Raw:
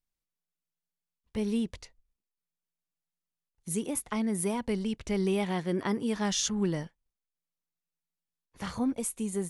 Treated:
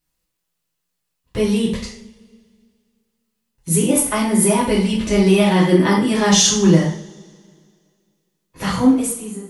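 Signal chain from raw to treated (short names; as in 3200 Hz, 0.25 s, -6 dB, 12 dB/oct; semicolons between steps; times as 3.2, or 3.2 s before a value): ending faded out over 0.82 s; 3.8–6.12 comb 3.4 ms, depth 39%; reverb, pre-delay 3 ms, DRR -6.5 dB; gain +8.5 dB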